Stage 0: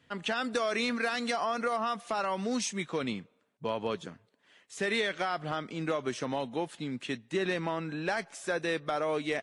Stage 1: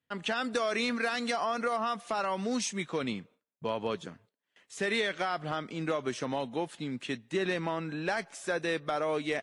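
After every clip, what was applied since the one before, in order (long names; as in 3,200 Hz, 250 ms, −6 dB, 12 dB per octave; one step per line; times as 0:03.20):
noise gate with hold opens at −51 dBFS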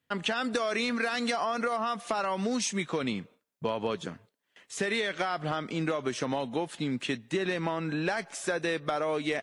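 downward compressor, threshold −32 dBFS, peak gain reduction 6.5 dB
level +6 dB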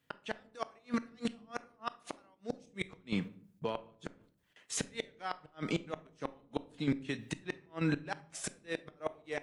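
square-wave tremolo 3.2 Hz, depth 60%, duty 50%
gate with flip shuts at −24 dBFS, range −38 dB
convolution reverb RT60 0.60 s, pre-delay 6 ms, DRR 13 dB
level +2.5 dB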